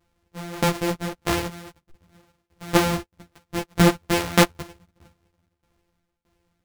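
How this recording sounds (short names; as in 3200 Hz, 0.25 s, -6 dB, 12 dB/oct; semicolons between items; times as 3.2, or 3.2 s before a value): a buzz of ramps at a fixed pitch in blocks of 256 samples; tremolo saw down 1.6 Hz, depth 95%; a shimmering, thickened sound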